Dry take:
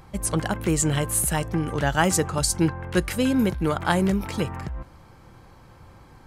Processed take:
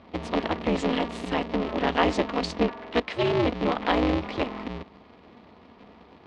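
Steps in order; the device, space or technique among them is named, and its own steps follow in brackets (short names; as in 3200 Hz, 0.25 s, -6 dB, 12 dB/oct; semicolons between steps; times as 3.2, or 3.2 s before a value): 2.63–3.22 HPF 210 Hz 12 dB/oct; ring modulator pedal into a guitar cabinet (polarity switched at an audio rate 120 Hz; speaker cabinet 86–4000 Hz, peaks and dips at 110 Hz -8 dB, 150 Hz -8 dB, 1500 Hz -8 dB)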